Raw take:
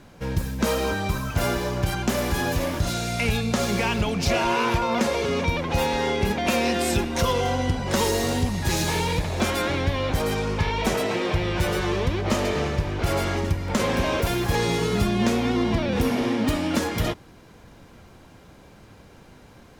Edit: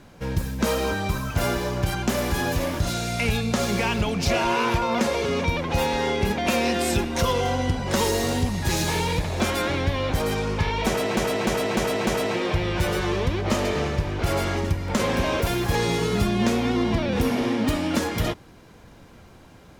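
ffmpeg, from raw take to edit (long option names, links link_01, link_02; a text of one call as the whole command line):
ffmpeg -i in.wav -filter_complex "[0:a]asplit=5[link_01][link_02][link_03][link_04][link_05];[link_01]atrim=end=11.172[link_06];[link_02]atrim=start=10.868:end=11.172[link_07];[link_03]atrim=start=10.868:end=11.172[link_08];[link_04]atrim=start=10.868:end=11.172[link_09];[link_05]atrim=start=10.868[link_10];[link_06][link_07]acrossfade=duration=0.004:curve1=hsin:curve2=hsin[link_11];[link_11][link_08]acrossfade=duration=0.004:curve1=hsin:curve2=hsin[link_12];[link_12][link_09]acrossfade=duration=0.004:curve1=hsin:curve2=hsin[link_13];[link_13][link_10]acrossfade=duration=0.004:curve1=hsin:curve2=hsin" out.wav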